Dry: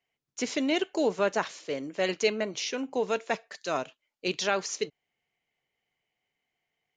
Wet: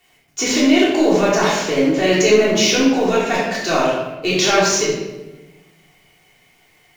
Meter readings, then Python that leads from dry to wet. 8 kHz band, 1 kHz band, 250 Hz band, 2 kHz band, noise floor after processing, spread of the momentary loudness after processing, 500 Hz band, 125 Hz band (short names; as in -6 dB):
+16.5 dB, +13.0 dB, +16.5 dB, +13.5 dB, -56 dBFS, 8 LU, +13.5 dB, +18.5 dB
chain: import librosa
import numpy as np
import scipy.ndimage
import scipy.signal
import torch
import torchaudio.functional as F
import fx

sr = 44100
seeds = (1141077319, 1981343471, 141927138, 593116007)

p1 = fx.law_mismatch(x, sr, coded='mu')
p2 = fx.over_compress(p1, sr, threshold_db=-31.0, ratio=-1.0)
p3 = p1 + (p2 * 10.0 ** (1.0 / 20.0))
y = fx.room_shoebox(p3, sr, seeds[0], volume_m3=590.0, walls='mixed', distance_m=3.4)